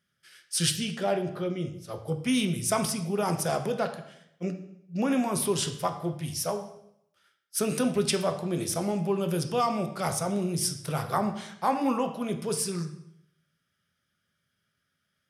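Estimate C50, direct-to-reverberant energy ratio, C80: 10.5 dB, 6.0 dB, 13.0 dB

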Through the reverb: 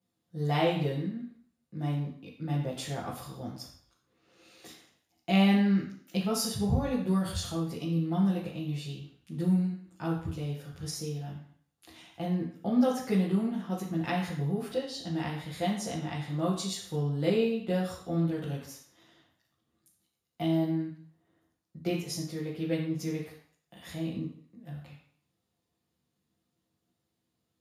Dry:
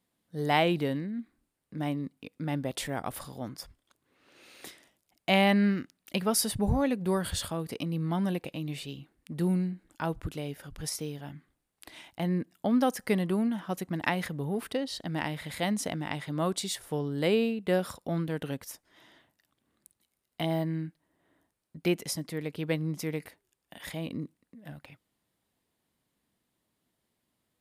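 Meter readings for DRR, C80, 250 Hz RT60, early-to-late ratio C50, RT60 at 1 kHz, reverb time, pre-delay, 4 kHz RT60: −6.5 dB, 8.0 dB, 0.55 s, 4.5 dB, 0.55 s, 0.55 s, 3 ms, 0.55 s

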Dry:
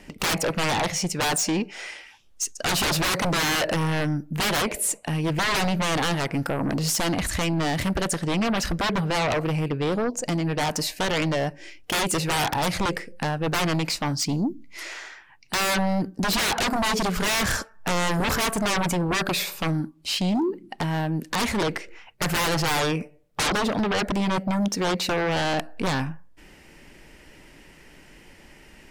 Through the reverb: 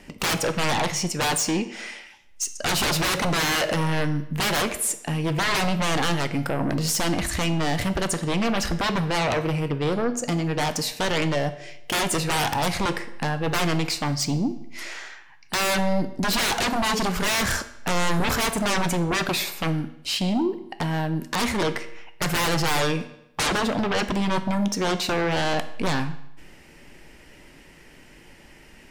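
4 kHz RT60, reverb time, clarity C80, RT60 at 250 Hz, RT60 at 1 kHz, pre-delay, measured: 0.70 s, 0.80 s, 16.0 dB, 0.80 s, 0.80 s, 8 ms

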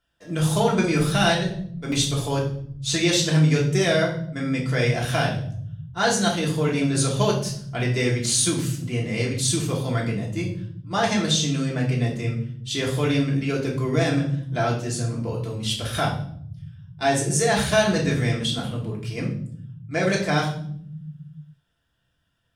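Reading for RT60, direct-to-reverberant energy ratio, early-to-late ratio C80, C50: 0.60 s, −3.5 dB, 11.0 dB, 7.0 dB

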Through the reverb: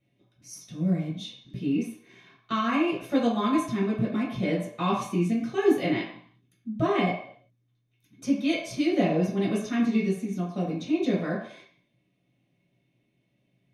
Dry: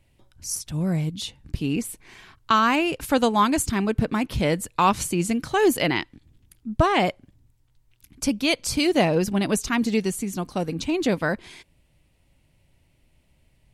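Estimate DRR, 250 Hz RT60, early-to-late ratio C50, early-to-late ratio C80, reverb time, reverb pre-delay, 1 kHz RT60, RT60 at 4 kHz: −8.0 dB, 0.40 s, 4.5 dB, 8.0 dB, 0.60 s, 3 ms, 0.65 s, 0.65 s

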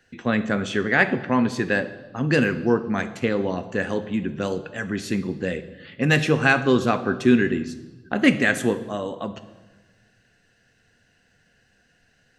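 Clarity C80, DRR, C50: 15.5 dB, 11.0 dB, 13.5 dB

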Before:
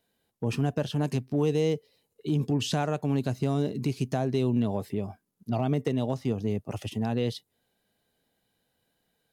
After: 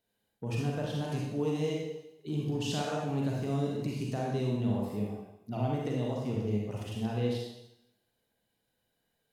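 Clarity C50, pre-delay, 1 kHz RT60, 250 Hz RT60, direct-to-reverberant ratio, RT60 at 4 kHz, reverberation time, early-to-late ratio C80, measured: −1.0 dB, 36 ms, 0.85 s, 0.80 s, −3.5 dB, 0.85 s, 0.85 s, 3.0 dB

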